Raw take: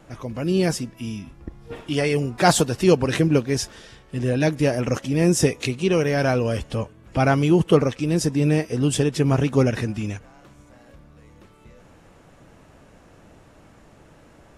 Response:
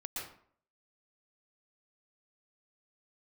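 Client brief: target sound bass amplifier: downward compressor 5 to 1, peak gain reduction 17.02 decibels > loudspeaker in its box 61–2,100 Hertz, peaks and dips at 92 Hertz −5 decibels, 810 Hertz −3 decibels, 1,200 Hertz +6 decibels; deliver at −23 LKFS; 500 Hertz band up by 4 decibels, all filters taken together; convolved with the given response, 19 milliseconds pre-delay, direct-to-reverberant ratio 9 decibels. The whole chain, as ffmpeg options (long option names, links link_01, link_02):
-filter_complex "[0:a]equalizer=frequency=500:width_type=o:gain=5,asplit=2[link_01][link_02];[1:a]atrim=start_sample=2205,adelay=19[link_03];[link_02][link_03]afir=irnorm=-1:irlink=0,volume=-9.5dB[link_04];[link_01][link_04]amix=inputs=2:normalize=0,acompressor=threshold=-25dB:ratio=5,highpass=frequency=61:width=0.5412,highpass=frequency=61:width=1.3066,equalizer=frequency=92:width_type=q:width=4:gain=-5,equalizer=frequency=810:width_type=q:width=4:gain=-3,equalizer=frequency=1200:width_type=q:width=4:gain=6,lowpass=frequency=2100:width=0.5412,lowpass=frequency=2100:width=1.3066,volume=6.5dB"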